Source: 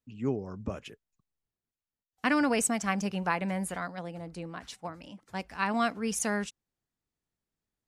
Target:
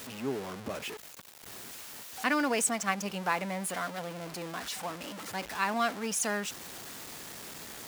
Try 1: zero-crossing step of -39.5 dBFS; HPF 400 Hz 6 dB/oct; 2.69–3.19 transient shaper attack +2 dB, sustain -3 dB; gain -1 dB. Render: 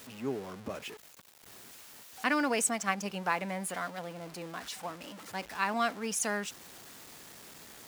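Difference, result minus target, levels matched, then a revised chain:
zero-crossing step: distortion -5 dB
zero-crossing step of -33 dBFS; HPF 400 Hz 6 dB/oct; 2.69–3.19 transient shaper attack +2 dB, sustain -3 dB; gain -1 dB

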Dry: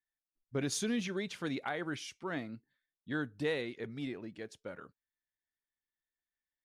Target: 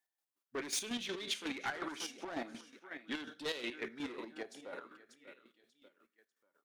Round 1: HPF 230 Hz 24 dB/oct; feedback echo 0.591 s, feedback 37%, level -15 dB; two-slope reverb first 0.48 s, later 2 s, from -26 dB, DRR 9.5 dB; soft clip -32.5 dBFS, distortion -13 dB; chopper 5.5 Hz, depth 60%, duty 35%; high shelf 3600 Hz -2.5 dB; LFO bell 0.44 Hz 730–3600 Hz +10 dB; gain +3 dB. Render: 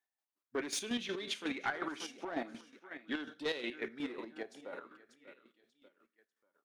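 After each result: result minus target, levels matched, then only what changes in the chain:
soft clip: distortion -5 dB; 8000 Hz band -3.5 dB
change: soft clip -38.5 dBFS, distortion -8 dB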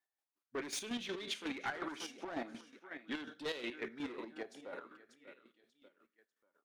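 8000 Hz band -3.5 dB
change: high shelf 3600 Hz +4 dB

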